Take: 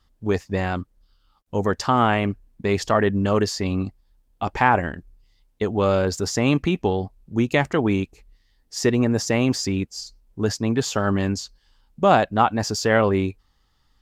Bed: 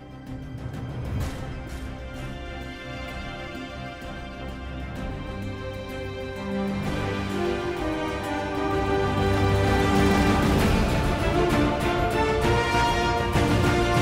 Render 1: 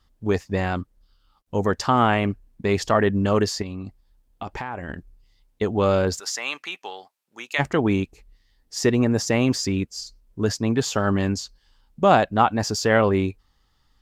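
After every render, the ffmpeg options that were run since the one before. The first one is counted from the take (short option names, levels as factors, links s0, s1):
-filter_complex "[0:a]asettb=1/sr,asplit=3[s0][s1][s2];[s0]atrim=end=3.624[s3];[s1]atrim=start=3.62:end=4.89,asetpts=PTS-STARTPTS,afade=t=in:d=0.004:c=qsin,afade=t=out:st=1.266:d=0.004:c=qsin,acompressor=threshold=0.0398:ratio=6:attack=3.2:release=140:knee=1:detection=peak[s4];[s2]atrim=start=4.886[s5];[s3][s4]acrossfade=d=0.004:c1=hsin:c2=qsin[s6];[s6][s5]acrossfade=d=0.004:c1=qsin:c2=hsin,asplit=3[s7][s8][s9];[s7]afade=t=out:st=6.18:d=0.02[s10];[s8]highpass=1200,afade=t=in:st=6.18:d=0.02,afade=t=out:st=7.58:d=0.02[s11];[s9]afade=t=in:st=7.58:d=0.02[s12];[s10][s11][s12]amix=inputs=3:normalize=0,asettb=1/sr,asplit=3[s13][s14][s15];[s13]atrim=end=9.474[s16];[s14]atrim=start=9.47:end=10.54,asetpts=PTS-STARTPTS,afade=t=in:d=0.004:c=qsin,afade=t=out:st=1.066:d=0.004:c=qsin,bandreject=f=800:w=7.6[s17];[s15]atrim=start=10.536[s18];[s16][s17]acrossfade=d=0.004:c1=hsin:c2=qsin[s19];[s19][s18]acrossfade=d=0.004:c1=qsin:c2=hsin"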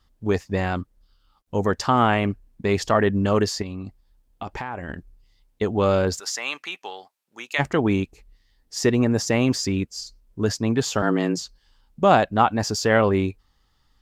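-filter_complex "[0:a]asettb=1/sr,asplit=3[s0][s1][s2];[s0]atrim=end=11.024[s3];[s1]atrim=start=11.02:end=11.42,asetpts=PTS-STARTPTS,afade=t=in:d=0.004:c=qsin,afade=t=out:st=0.396:d=0.004:c=qsin,afreqshift=81[s4];[s2]atrim=start=11.416[s5];[s3][s4]acrossfade=d=0.004:c1=hsin:c2=qsin[s6];[s6][s5]acrossfade=d=0.004:c1=qsin:c2=hsin"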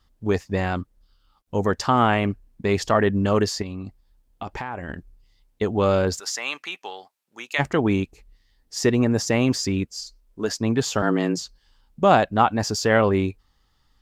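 -filter_complex "[0:a]asettb=1/sr,asplit=3[s0][s1][s2];[s0]atrim=end=9.944[s3];[s1]atrim=start=9.94:end=10.61,asetpts=PTS-STARTPTS,afade=t=in:d=0.004:c=qsin,afade=t=out:st=0.666:d=0.004:c=qsin,equalizer=f=110:w=1:g=-15[s4];[s2]atrim=start=10.606[s5];[s3][s4]acrossfade=d=0.004:c1=hsin:c2=qsin[s6];[s6][s5]acrossfade=d=0.004:c1=qsin:c2=hsin"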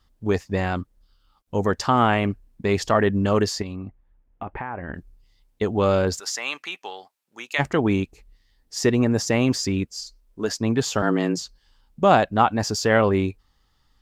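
-filter_complex "[0:a]asettb=1/sr,asplit=3[s0][s1][s2];[s0]atrim=end=3.764[s3];[s1]atrim=start=3.76:end=4.95,asetpts=PTS-STARTPTS,afade=t=in:d=0.004:c=qsin,afade=t=out:st=1.186:d=0.004:c=qsin,lowpass=f=2300:w=0.5412,lowpass=f=2300:w=1.3066[s4];[s2]atrim=start=4.946[s5];[s3][s4]acrossfade=d=0.004:c1=hsin:c2=qsin[s6];[s6][s5]acrossfade=d=0.004:c1=qsin:c2=hsin"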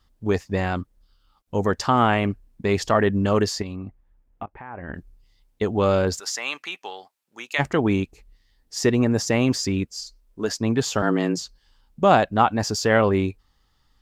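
-filter_complex "[0:a]asplit=2[s0][s1];[s0]atrim=end=4.46,asetpts=PTS-STARTPTS,afade=t=out:st=4.456:d=0.004:c=hsin:silence=0.0794328[s2];[s1]atrim=start=4.46,asetpts=PTS-STARTPTS,afade=t=in:d=0.48:silence=0.0794328[s3];[s2][s3]concat=n=2:v=0:a=1"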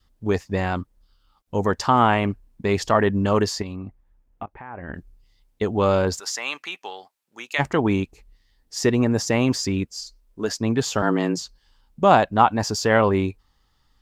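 -af "adynamicequalizer=threshold=0.02:dfrequency=950:dqfactor=3.3:tfrequency=950:tqfactor=3.3:attack=5:release=100:ratio=0.375:range=2.5:mode=boostabove:tftype=bell"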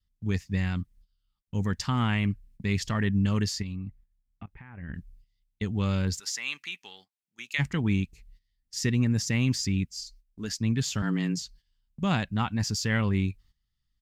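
-af "firequalizer=gain_entry='entry(170,0);entry(340,-14);entry(650,-21);entry(2000,-4)':delay=0.05:min_phase=1,agate=range=0.224:threshold=0.00224:ratio=16:detection=peak"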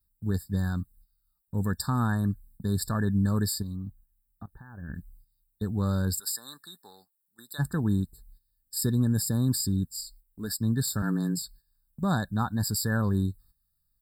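-filter_complex "[0:a]acrossover=split=2600[s0][s1];[s1]aexciter=amount=7.3:drive=7.4:freq=8300[s2];[s0][s2]amix=inputs=2:normalize=0,afftfilt=real='re*eq(mod(floor(b*sr/1024/1800),2),0)':imag='im*eq(mod(floor(b*sr/1024/1800),2),0)':win_size=1024:overlap=0.75"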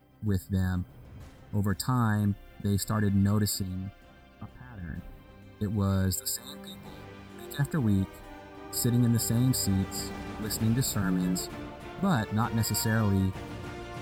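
-filter_complex "[1:a]volume=0.119[s0];[0:a][s0]amix=inputs=2:normalize=0"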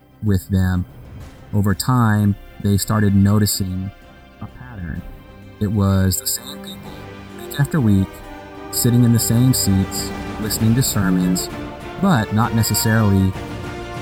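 -af "volume=3.55"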